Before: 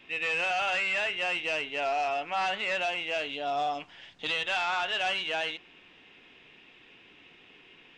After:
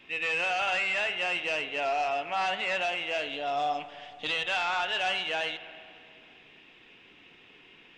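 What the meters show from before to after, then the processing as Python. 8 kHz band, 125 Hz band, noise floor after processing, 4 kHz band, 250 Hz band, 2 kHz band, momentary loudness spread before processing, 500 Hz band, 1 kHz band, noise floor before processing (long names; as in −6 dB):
0.0 dB, +0.5 dB, −56 dBFS, 0.0 dB, 0.0 dB, +0.5 dB, 6 LU, +0.5 dB, +0.5 dB, −57 dBFS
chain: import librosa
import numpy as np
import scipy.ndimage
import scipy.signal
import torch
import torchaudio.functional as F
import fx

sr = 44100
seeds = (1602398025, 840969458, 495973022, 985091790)

y = fx.rev_spring(x, sr, rt60_s=2.4, pass_ms=(39, 54, 58), chirp_ms=75, drr_db=11.5)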